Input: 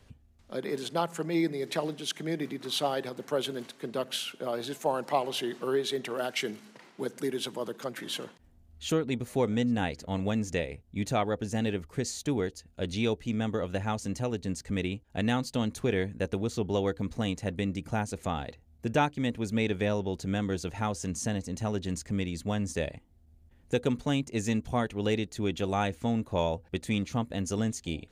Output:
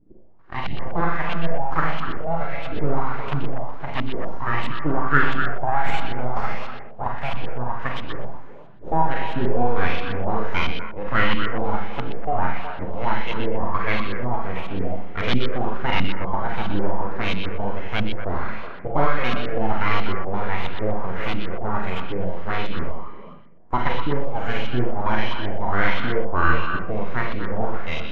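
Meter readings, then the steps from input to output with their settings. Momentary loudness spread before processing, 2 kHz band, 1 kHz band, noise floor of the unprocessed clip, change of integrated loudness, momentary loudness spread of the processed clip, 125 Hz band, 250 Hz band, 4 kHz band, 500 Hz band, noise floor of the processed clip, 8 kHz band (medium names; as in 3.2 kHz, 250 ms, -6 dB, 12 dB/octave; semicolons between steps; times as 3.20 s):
6 LU, +12.0 dB, +11.0 dB, -60 dBFS, +5.5 dB, 8 LU, +5.0 dB, +1.0 dB, +2.5 dB, +3.0 dB, -35 dBFS, under -15 dB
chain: bass shelf 230 Hz -9.5 dB; full-wave rectifier; Schroeder reverb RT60 0.7 s, combs from 33 ms, DRR 0.5 dB; LFO low-pass saw up 1.5 Hz 230–3200 Hz; on a send: repeats whose band climbs or falls 123 ms, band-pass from 3.5 kHz, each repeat -1.4 oct, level -3.5 dB; on the sum: trim +8 dB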